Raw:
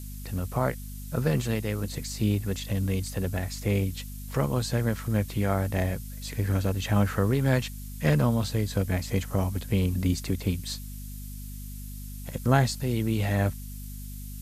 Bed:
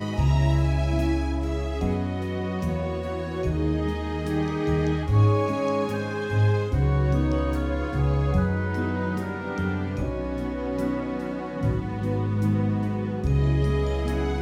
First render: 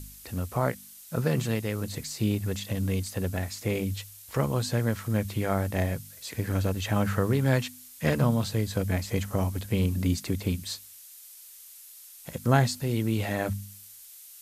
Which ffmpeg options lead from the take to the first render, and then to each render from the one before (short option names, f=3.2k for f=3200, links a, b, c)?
-af "bandreject=f=50:t=h:w=4,bandreject=f=100:t=h:w=4,bandreject=f=150:t=h:w=4,bandreject=f=200:t=h:w=4,bandreject=f=250:t=h:w=4"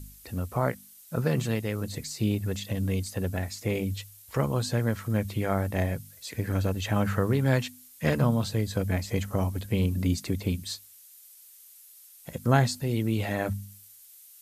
-af "afftdn=nr=6:nf=-49"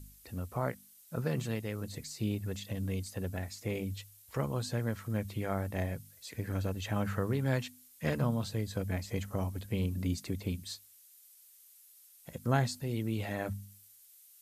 -af "volume=-7dB"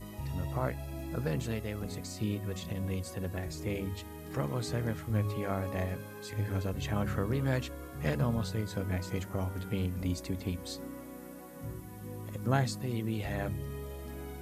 -filter_complex "[1:a]volume=-17dB[a];[0:a][a]amix=inputs=2:normalize=0"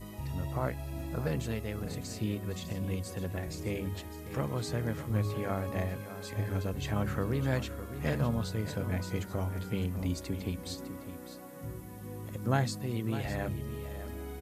-af "aecho=1:1:605:0.251"